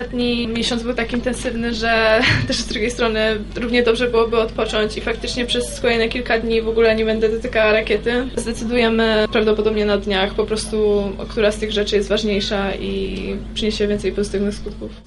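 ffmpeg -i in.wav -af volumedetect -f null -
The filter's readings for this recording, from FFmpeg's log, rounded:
mean_volume: -18.6 dB
max_volume: -3.2 dB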